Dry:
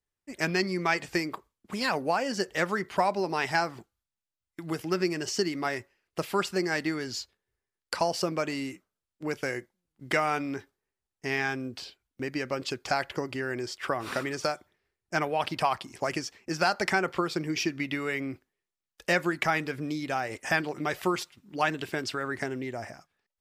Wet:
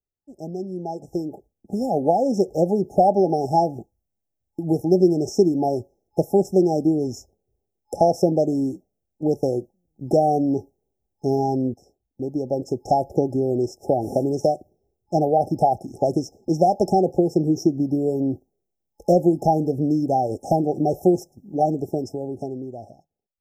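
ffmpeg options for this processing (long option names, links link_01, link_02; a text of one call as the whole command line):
ffmpeg -i in.wav -filter_complex "[0:a]asplit=2[link_01][link_02];[link_01]atrim=end=11.74,asetpts=PTS-STARTPTS,afade=type=out:start_time=11.736:duration=0.004:curve=hsin:silence=0.211349[link_03];[link_02]atrim=start=11.74,asetpts=PTS-STARTPTS,afade=type=in:duration=1.43:silence=0.211349[link_04];[link_03][link_04]concat=n=2:v=0:a=1,afftfilt=real='re*(1-between(b*sr/4096,850,5200))':imag='im*(1-between(b*sr/4096,850,5200))':win_size=4096:overlap=0.75,equalizer=frequency=8000:width=0.34:gain=-14.5,dynaudnorm=framelen=240:gausssize=13:maxgain=15.5dB,volume=-2dB" out.wav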